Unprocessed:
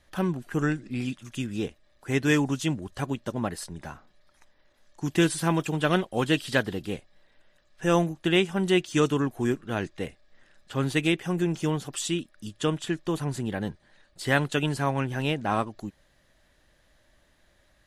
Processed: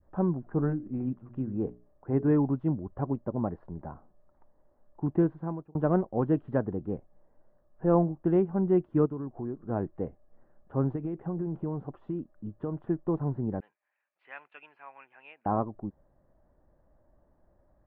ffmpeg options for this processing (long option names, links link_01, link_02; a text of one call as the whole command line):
ffmpeg -i in.wav -filter_complex "[0:a]asettb=1/sr,asplit=3[link_01][link_02][link_03];[link_01]atrim=end=0.414[link_04];[link_02]atrim=start=0.41:end=2.25,asetpts=PTS-STARTPTS,afade=type=in:duration=0.004:curve=qsin,afade=type=out:start_time=1.836:duration=0.004:curve=qsin,bandreject=frequency=60:width_type=h:width=6,bandreject=frequency=120:width_type=h:width=6,bandreject=frequency=180:width_type=h:width=6,bandreject=frequency=240:width_type=h:width=6,bandreject=frequency=300:width_type=h:width=6,bandreject=frequency=360:width_type=h:width=6,bandreject=frequency=420:width_type=h:width=6[link_05];[link_03]atrim=start=2.246[link_06];[link_04][link_05]acrossfade=duration=0.004:curve1=hsin:curve2=qsin[link_07];[link_07][link_06]acrossfade=duration=0.004:curve1=qsin:curve2=hsin,asplit=3[link_08][link_09][link_10];[link_08]afade=type=out:start_time=9.05:duration=0.02[link_11];[link_09]acompressor=threshold=-38dB:ratio=2:attack=3.2:release=140:knee=1:detection=peak,afade=type=in:start_time=9.05:duration=0.02,afade=type=out:start_time=9.67:duration=0.02[link_12];[link_10]afade=type=in:start_time=9.67:duration=0.02[link_13];[link_11][link_12][link_13]amix=inputs=3:normalize=0,asettb=1/sr,asplit=3[link_14][link_15][link_16];[link_14]atrim=end=10.954[link_17];[link_15]atrim=start=10.95:end=12.9,asetpts=PTS-STARTPTS,afade=type=in:duration=0.004:curve=qsin,afade=type=out:start_time=1.946:duration=0.004:curve=qsin,acompressor=threshold=-27dB:ratio=12:attack=3.2:release=140:knee=1:detection=peak[link_18];[link_16]atrim=start=12.896[link_19];[link_17][link_18]acrossfade=duration=0.004:curve1=hsin:curve2=qsin[link_20];[link_20][link_19]acrossfade=duration=0.004:curve1=qsin:curve2=hsin,asettb=1/sr,asplit=3[link_21][link_22][link_23];[link_21]atrim=end=13.604[link_24];[link_22]atrim=start=13.6:end=15.46,asetpts=PTS-STARTPTS,afade=type=in:duration=0.004:curve=qsin,afade=type=out:start_time=1.856:duration=0.004:curve=qsin,highpass=frequency=2500:width_type=q:width=8.1[link_25];[link_23]atrim=start=15.456[link_26];[link_24][link_25]acrossfade=duration=0.004:curve1=hsin:curve2=qsin[link_27];[link_27][link_26]acrossfade=duration=0.004:curve1=qsin:curve2=hsin,asplit=2[link_28][link_29];[link_28]atrim=end=5.75,asetpts=PTS-STARTPTS,afade=type=out:start_time=5.09:duration=0.66[link_30];[link_29]atrim=start=5.75,asetpts=PTS-STARTPTS,afade=type=in:duration=0.004:curve=hsin[link_31];[link_30][link_31]concat=n=2:v=0:a=1,lowpass=frequency=1000:width=0.5412,lowpass=frequency=1000:width=1.3066,adynamicequalizer=threshold=0.01:dfrequency=730:dqfactor=0.88:tfrequency=730:tqfactor=0.88:attack=5:release=100:ratio=0.375:range=2:mode=cutabove:tftype=bell" out.wav